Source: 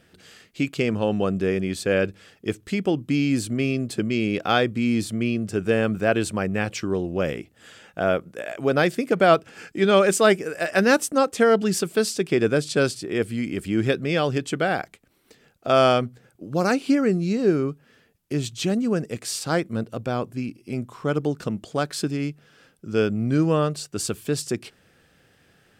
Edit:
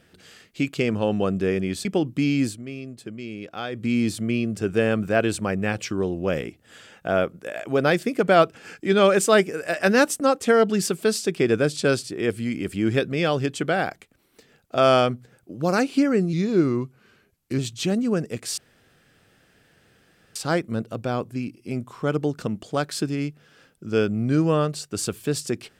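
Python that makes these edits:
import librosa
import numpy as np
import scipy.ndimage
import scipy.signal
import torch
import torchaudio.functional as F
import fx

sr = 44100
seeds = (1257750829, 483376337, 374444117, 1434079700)

y = fx.edit(x, sr, fx.cut(start_s=1.85, length_s=0.92),
    fx.fade_down_up(start_s=3.36, length_s=1.41, db=-11.5, fade_s=0.14),
    fx.speed_span(start_s=17.25, length_s=1.13, speed=0.9),
    fx.insert_room_tone(at_s=19.37, length_s=1.78), tone=tone)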